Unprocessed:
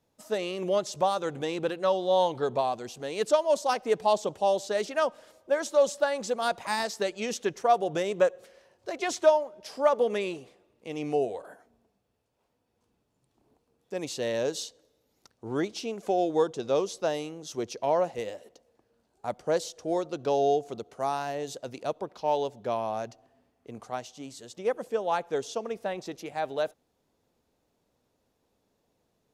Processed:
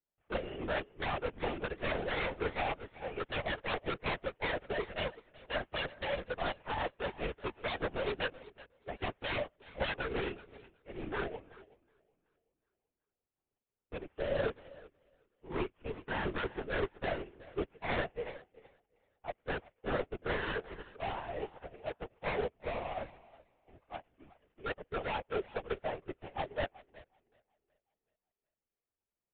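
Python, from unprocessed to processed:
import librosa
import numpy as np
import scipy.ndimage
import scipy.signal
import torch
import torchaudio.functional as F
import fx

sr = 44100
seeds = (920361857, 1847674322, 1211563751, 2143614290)

p1 = fx.cvsd(x, sr, bps=16000)
p2 = 10.0 ** (-26.5 / 20.0) * (np.abs((p1 / 10.0 ** (-26.5 / 20.0) + 3.0) % 4.0 - 2.0) - 1.0)
p3 = p2 + fx.echo_feedback(p2, sr, ms=374, feedback_pct=45, wet_db=-8.0, dry=0)
p4 = fx.lpc_vocoder(p3, sr, seeds[0], excitation='whisper', order=16)
y = fx.upward_expand(p4, sr, threshold_db=-46.0, expansion=2.5)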